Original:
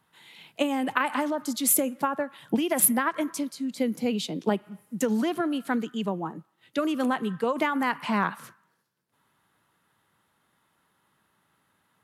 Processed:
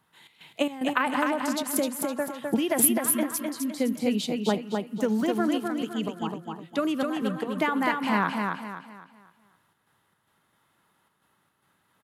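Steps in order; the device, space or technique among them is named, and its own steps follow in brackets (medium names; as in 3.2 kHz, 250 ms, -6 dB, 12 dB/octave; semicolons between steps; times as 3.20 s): trance gate with a delay (trance gate "xx.xx.xxxx" 111 bpm -12 dB; feedback delay 256 ms, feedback 36%, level -4 dB); 4.67–5.40 s: de-esser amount 85%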